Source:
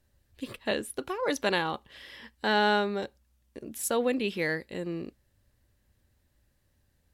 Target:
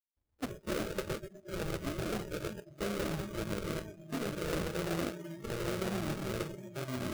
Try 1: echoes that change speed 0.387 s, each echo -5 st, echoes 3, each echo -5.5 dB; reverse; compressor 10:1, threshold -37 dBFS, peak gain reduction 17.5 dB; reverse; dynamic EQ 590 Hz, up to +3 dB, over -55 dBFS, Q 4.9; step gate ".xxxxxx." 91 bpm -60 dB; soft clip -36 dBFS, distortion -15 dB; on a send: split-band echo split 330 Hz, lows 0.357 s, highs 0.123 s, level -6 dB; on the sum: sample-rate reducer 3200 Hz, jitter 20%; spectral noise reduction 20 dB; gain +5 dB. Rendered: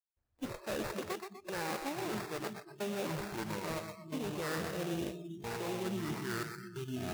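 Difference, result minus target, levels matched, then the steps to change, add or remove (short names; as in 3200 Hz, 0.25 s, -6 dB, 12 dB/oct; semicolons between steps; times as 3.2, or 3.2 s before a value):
sample-rate reducer: distortion -12 dB; soft clip: distortion +12 dB
change: soft clip -27.5 dBFS, distortion -27 dB; change: sample-rate reducer 940 Hz, jitter 20%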